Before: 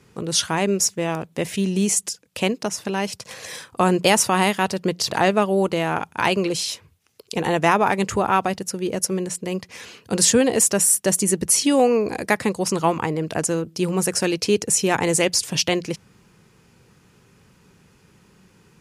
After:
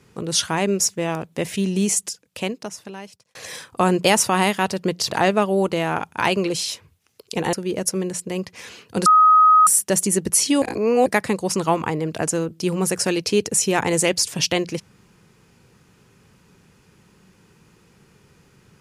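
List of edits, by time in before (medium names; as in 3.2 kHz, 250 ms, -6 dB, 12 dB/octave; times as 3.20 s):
1.89–3.35 s: fade out
7.53–8.69 s: delete
10.22–10.83 s: bleep 1.26 kHz -9 dBFS
11.78–12.22 s: reverse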